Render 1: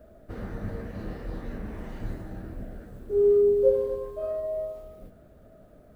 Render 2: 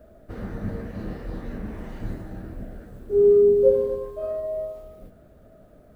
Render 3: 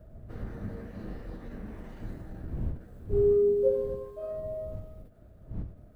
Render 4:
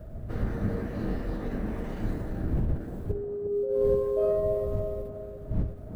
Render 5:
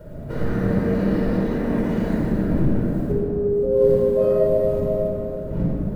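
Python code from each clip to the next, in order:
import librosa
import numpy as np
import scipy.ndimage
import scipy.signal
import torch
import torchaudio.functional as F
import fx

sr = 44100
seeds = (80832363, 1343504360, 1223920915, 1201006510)

y1 = fx.dynamic_eq(x, sr, hz=200.0, q=0.9, threshold_db=-39.0, ratio=4.0, max_db=8)
y1 = y1 * 10.0 ** (1.5 / 20.0)
y2 = fx.dmg_wind(y1, sr, seeds[0], corner_hz=100.0, level_db=-32.0)
y2 = fx.end_taper(y2, sr, db_per_s=130.0)
y2 = y2 * 10.0 ** (-7.5 / 20.0)
y3 = fx.over_compress(y2, sr, threshold_db=-32.0, ratio=-1.0)
y3 = fx.echo_banded(y3, sr, ms=355, feedback_pct=48, hz=480.0, wet_db=-4.0)
y3 = y3 * 10.0 ** (5.0 / 20.0)
y4 = fx.low_shelf_res(y3, sr, hz=130.0, db=-9.0, q=1.5)
y4 = fx.room_shoebox(y4, sr, seeds[1], volume_m3=3700.0, walls='mixed', distance_m=4.7)
y4 = y4 * 10.0 ** (3.5 / 20.0)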